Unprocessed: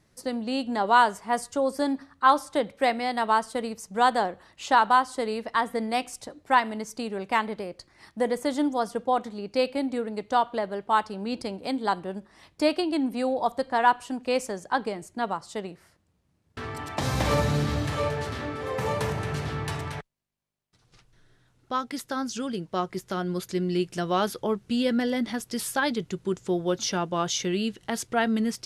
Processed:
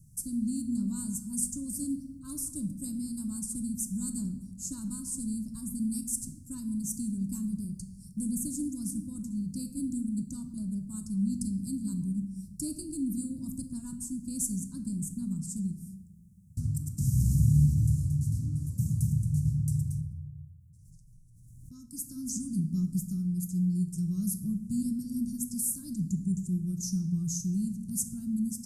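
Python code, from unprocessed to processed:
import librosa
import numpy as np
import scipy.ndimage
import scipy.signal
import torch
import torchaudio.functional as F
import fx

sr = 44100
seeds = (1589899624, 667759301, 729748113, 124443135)

y = scipy.signal.sosfilt(scipy.signal.cheby2(4, 50, [430.0, 3500.0], 'bandstop', fs=sr, output='sos'), x)
y = fx.rider(y, sr, range_db=4, speed_s=0.5)
y = fx.room_shoebox(y, sr, seeds[0], volume_m3=540.0, walls='mixed', distance_m=0.56)
y = fx.pre_swell(y, sr, db_per_s=25.0, at=(19.96, 21.8))
y = F.gain(torch.from_numpy(y), 7.0).numpy()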